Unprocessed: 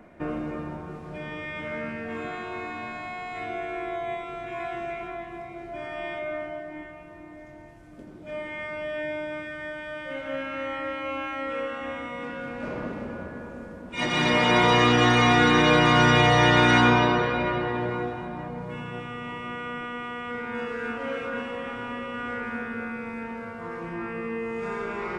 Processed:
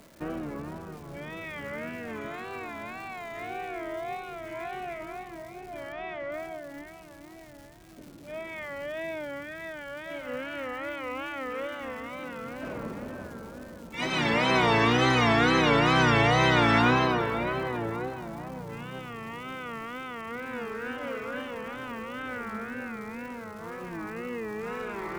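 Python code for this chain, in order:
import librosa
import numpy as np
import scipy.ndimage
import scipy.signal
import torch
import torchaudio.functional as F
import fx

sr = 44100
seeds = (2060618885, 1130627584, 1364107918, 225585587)

y = fx.wow_flutter(x, sr, seeds[0], rate_hz=2.1, depth_cents=130.0)
y = fx.dmg_crackle(y, sr, seeds[1], per_s=530.0, level_db=-40.0)
y = fx.lowpass(y, sr, hz=3600.0, slope=12, at=(5.92, 6.32))
y = y * librosa.db_to_amplitude(-3.5)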